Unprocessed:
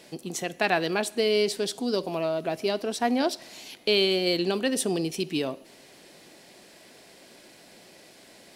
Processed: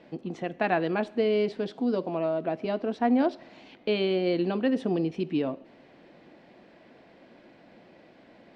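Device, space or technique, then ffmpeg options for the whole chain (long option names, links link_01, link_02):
phone in a pocket: -filter_complex "[0:a]asettb=1/sr,asplit=3[link_01][link_02][link_03];[link_01]atrim=end=1.714[link_04];[link_02]atrim=start=1.71:end=2.65,asetpts=PTS-STARTPTS,afade=type=in:duration=0.004:curve=qsin,afade=type=out:start_time=0.936:duration=0.004:curve=qsin,highpass=130[link_05];[link_03]atrim=start=2.646[link_06];[link_04][link_05]acrossfade=duration=0.004:curve1=hsin:curve2=qsin[link_07];[link_07][link_06]acrossfade=duration=0.004:curve1=qsin:curve2=hsin,lowpass=3500,aemphasis=mode=reproduction:type=cd,equalizer=frequency=250:width_type=o:width=0.7:gain=3,highshelf=frequency=2500:gain=-9,bandreject=frequency=400:width=13"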